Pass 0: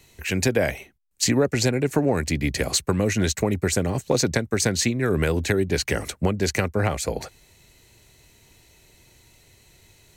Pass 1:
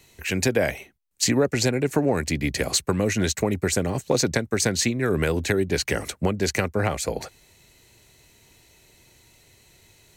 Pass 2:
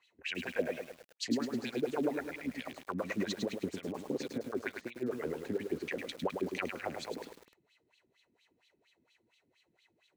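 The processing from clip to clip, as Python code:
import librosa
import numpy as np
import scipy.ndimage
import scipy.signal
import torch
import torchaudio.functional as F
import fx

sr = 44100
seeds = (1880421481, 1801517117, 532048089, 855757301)

y1 = fx.low_shelf(x, sr, hz=100.0, db=-5.0)
y2 = fx.filter_lfo_bandpass(y1, sr, shape='sine', hz=4.3, low_hz=230.0, high_hz=3600.0, q=4.0)
y2 = fx.echo_crushed(y2, sr, ms=104, feedback_pct=55, bits=8, wet_db=-5.5)
y2 = F.gain(torch.from_numpy(y2), -4.0).numpy()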